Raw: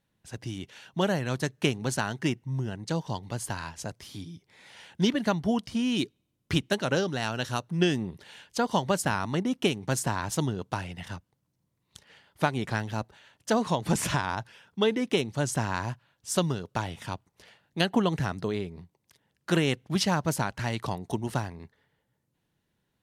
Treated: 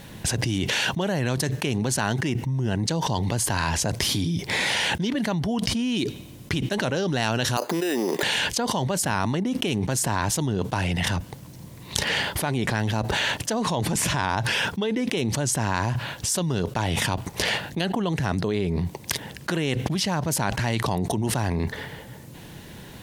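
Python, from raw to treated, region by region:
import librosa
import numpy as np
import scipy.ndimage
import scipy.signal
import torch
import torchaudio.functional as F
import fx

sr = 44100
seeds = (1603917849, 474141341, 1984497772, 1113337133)

y = fx.chain(x, sr, fx.highpass(hz=340.0, slope=24),
    fx.resample_bad(factor=8, down='filtered', up='hold'), at=(7.57, 8.23))
y = fx.peak_eq(y, sr, hz=1300.0, db=-4.5, octaves=0.34)
y = fx.env_flatten(y, sr, amount_pct=100)
y = y * librosa.db_to_amplitude(-5.0)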